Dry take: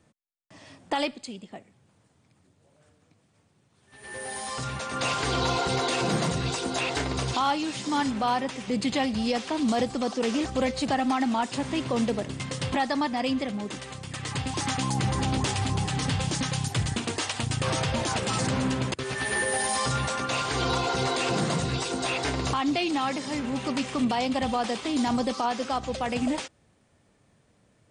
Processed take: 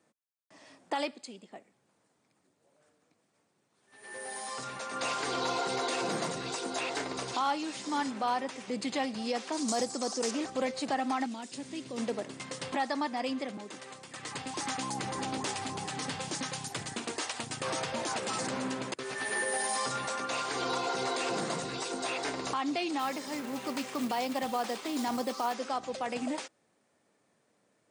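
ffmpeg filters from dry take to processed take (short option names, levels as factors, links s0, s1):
-filter_complex "[0:a]asettb=1/sr,asplit=3[s0][s1][s2];[s0]atrim=end=9.524[s3];[s1]atrim=start=9.52:end=10.31,asetpts=PTS-STARTPTS,afade=t=in:d=0.004:c=qsin,afade=t=out:st=0.786:d=0.004:c=qsin,highshelf=f=4300:t=q:w=1.5:g=9.5[s4];[s2]atrim=start=10.306[s5];[s3][s4]acrossfade=d=0.004:c1=hsin:c2=qsin[s6];[s6][s5]acrossfade=d=0.004:c1=qsin:c2=hsin,asettb=1/sr,asplit=3[s7][s8][s9];[s7]atrim=end=11.264[s10];[s8]atrim=start=11.26:end=11.98,asetpts=PTS-STARTPTS,afade=t=in:d=0.004:c=qsin,afade=t=out:st=0.716:d=0.004:c=qsin,equalizer=f=1000:t=o:w=2.2:g=-14.5[s11];[s9]atrim=start=11.976[s12];[s10][s11]acrossfade=d=0.004:c1=hsin:c2=qsin[s13];[s13][s12]acrossfade=d=0.004:c1=qsin:c2=hsin,asettb=1/sr,asplit=3[s14][s15][s16];[s14]atrim=end=13.574[s17];[s15]atrim=start=13.57:end=14.16,asetpts=PTS-STARTPTS,afade=t=in:d=0.004:c=qsin,afade=t=out:st=0.586:d=0.004:c=qsin,acrossover=split=210|2000[s18][s19][s20];[s18]acompressor=threshold=0.00708:ratio=4[s21];[s19]acompressor=threshold=0.0158:ratio=4[s22];[s20]acompressor=threshold=0.00891:ratio=4[s23];[s21][s22][s23]amix=inputs=3:normalize=0[s24];[s16]atrim=start=14.156[s25];[s17][s24]acrossfade=d=0.004:c1=hsin:c2=qsin[s26];[s26][s25]acrossfade=d=0.004:c1=qsin:c2=hsin,asettb=1/sr,asplit=3[s27][s28][s29];[s27]atrim=end=22.994[s30];[s28]atrim=start=22.99:end=25.54,asetpts=PTS-STARTPTS,afade=t=in:d=0.004:c=qsin,afade=t=out:st=2.546:d=0.004:c=qsin,acrusher=bits=4:mode=log:mix=0:aa=0.000001[s31];[s29]atrim=start=25.536[s32];[s30][s31]acrossfade=d=0.004:c1=hsin:c2=qsin[s33];[s33][s32]acrossfade=d=0.004:c1=qsin:c2=hsin,highpass=270,equalizer=f=3100:t=o:w=0.67:g=-3.5,volume=0.596"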